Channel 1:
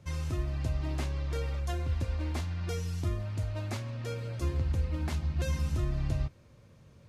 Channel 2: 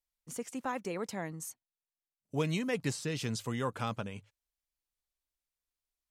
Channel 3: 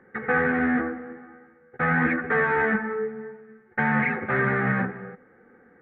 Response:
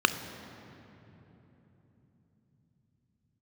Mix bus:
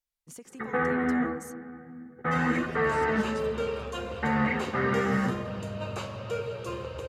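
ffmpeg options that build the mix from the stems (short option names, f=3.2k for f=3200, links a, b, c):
-filter_complex "[0:a]lowshelf=f=340:t=q:w=3:g=-12,flanger=delay=5:depth=8.6:regen=-65:speed=1.7:shape=triangular,adelay=2250,volume=2dB,asplit=2[a][b];[b]volume=-7.5dB[c];[1:a]volume=-1dB[d];[2:a]bass=f=250:g=2,treble=f=4k:g=5,adelay=450,volume=-5dB,asplit=2[e][f];[f]volume=-20.5dB[g];[a][d]amix=inputs=2:normalize=0,acompressor=threshold=-43dB:ratio=5,volume=0dB[h];[3:a]atrim=start_sample=2205[i];[c][g]amix=inputs=2:normalize=0[j];[j][i]afir=irnorm=-1:irlink=0[k];[e][h][k]amix=inputs=3:normalize=0"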